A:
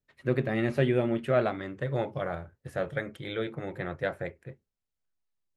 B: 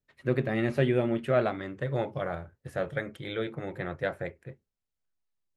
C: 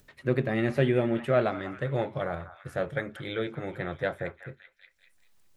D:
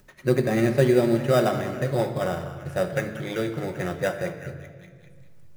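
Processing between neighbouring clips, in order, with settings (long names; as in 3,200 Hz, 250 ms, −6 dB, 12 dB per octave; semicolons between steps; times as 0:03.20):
no processing that can be heard
echo through a band-pass that steps 194 ms, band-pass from 1,100 Hz, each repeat 0.7 octaves, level −10 dB; upward compression, threshold −46 dBFS; level +1 dB
in parallel at −4 dB: sample-rate reduction 4,300 Hz, jitter 0%; on the sum: convolution reverb RT60 1.9 s, pre-delay 5 ms, DRR 6.5 dB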